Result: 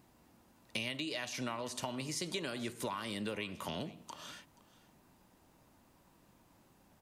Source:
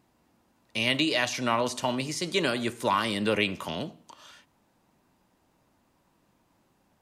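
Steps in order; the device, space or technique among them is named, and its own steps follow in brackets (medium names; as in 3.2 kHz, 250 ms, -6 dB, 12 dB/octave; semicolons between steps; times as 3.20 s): ASMR close-microphone chain (bass shelf 140 Hz +3.5 dB; compression 10:1, threshold -37 dBFS, peak gain reduction 17.5 dB; treble shelf 8.8 kHz +6 dB); delay 479 ms -20 dB; trim +1 dB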